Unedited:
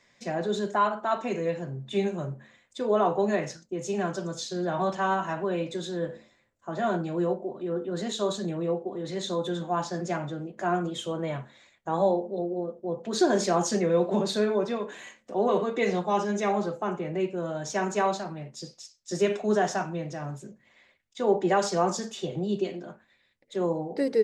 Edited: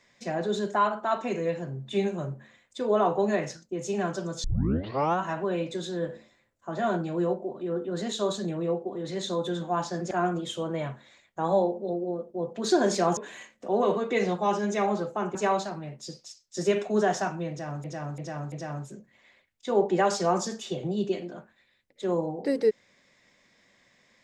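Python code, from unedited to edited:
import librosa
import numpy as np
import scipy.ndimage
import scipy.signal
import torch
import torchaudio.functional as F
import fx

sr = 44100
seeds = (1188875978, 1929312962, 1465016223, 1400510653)

y = fx.edit(x, sr, fx.tape_start(start_s=4.44, length_s=0.76),
    fx.cut(start_s=10.11, length_s=0.49),
    fx.cut(start_s=13.66, length_s=1.17),
    fx.cut(start_s=17.01, length_s=0.88),
    fx.repeat(start_s=20.04, length_s=0.34, count=4), tone=tone)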